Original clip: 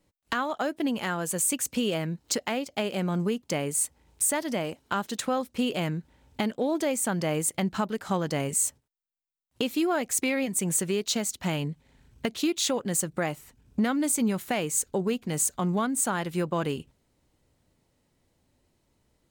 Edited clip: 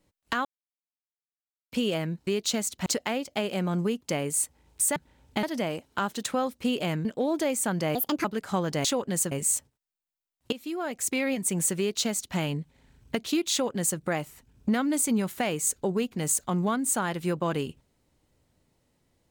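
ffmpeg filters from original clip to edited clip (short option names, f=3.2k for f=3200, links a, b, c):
-filter_complex "[0:a]asplit=13[a][b][c][d][e][f][g][h][i][j][k][l][m];[a]atrim=end=0.45,asetpts=PTS-STARTPTS,afade=t=out:st=0.446:d=0.004:c=hsin[n];[b]atrim=start=0.45:end=1.72,asetpts=PTS-STARTPTS,volume=0[o];[c]atrim=start=1.72:end=2.272,asetpts=PTS-STARTPTS,afade=t=in:d=0.004:c=hsin[p];[d]atrim=start=10.888:end=11.482[q];[e]atrim=start=2.268:end=4.372[r];[f]atrim=start=5.988:end=6.462[s];[g]atrim=start=4.368:end=5.992[t];[h]atrim=start=6.458:end=7.364[u];[i]atrim=start=7.36:end=7.82,asetpts=PTS-STARTPTS,asetrate=68796,aresample=44100[v];[j]atrim=start=7.816:end=8.422[w];[k]atrim=start=12.618:end=13.092[x];[l]atrim=start=8.418:end=9.63,asetpts=PTS-STARTPTS,afade=t=out:st=1.208:d=0.004:c=hsin:silence=0.199526[y];[m]atrim=start=9.63,asetpts=PTS-STARTPTS,afade=t=in:d=0.75:silence=0.199526[z];[n][o][p]concat=n=3:v=0:a=1[aa];[aa][q]acrossfade=d=0.004:c1=hsin:c2=hsin[ab];[ab][r]acrossfade=d=0.004:c1=hsin:c2=hsin[ac];[ac][s]acrossfade=d=0.004:c1=hsin:c2=hsin[ad];[ad][t]acrossfade=d=0.004:c1=hsin:c2=hsin[ae];[ae][u]acrossfade=d=0.004:c1=hsin:c2=hsin[af];[af][v]acrossfade=d=0.004:c1=hsin:c2=hsin[ag];[ag][w]acrossfade=d=0.004:c1=hsin:c2=hsin[ah];[ah][x]acrossfade=d=0.004:c1=hsin:c2=hsin[ai];[y][z]concat=n=2:v=0:a=1[aj];[ai][aj]acrossfade=d=0.004:c1=hsin:c2=hsin"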